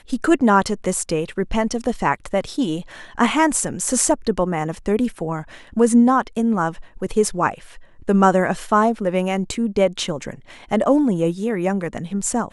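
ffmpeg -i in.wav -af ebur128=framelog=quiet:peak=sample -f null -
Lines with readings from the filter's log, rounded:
Integrated loudness:
  I:         -19.9 LUFS
  Threshold: -30.3 LUFS
Loudness range:
  LRA:         2.3 LU
  Threshold: -40.2 LUFS
  LRA low:   -21.3 LUFS
  LRA high:  -19.0 LUFS
Sample peak:
  Peak:       -1.4 dBFS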